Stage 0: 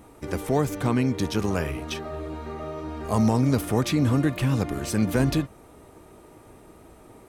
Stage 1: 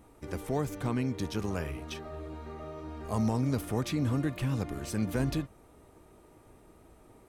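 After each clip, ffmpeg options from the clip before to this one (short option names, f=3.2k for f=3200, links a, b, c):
-af "lowshelf=f=62:g=6.5,volume=-8.5dB"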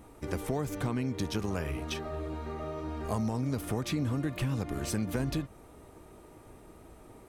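-af "acompressor=threshold=-32dB:ratio=6,volume=4.5dB"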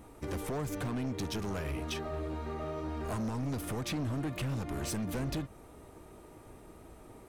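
-af "asoftclip=type=hard:threshold=-31dB"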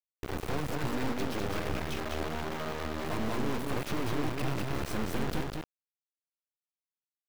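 -filter_complex "[0:a]acrusher=bits=3:dc=4:mix=0:aa=0.000001,asplit=2[a][b];[b]adynamicsmooth=sensitivity=5:basefreq=3.5k,volume=2dB[c];[a][c]amix=inputs=2:normalize=0,aecho=1:1:202:0.708,volume=-5dB"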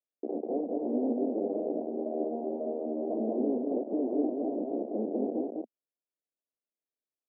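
-af "asuperpass=centerf=400:order=12:qfactor=0.83,volume=6dB"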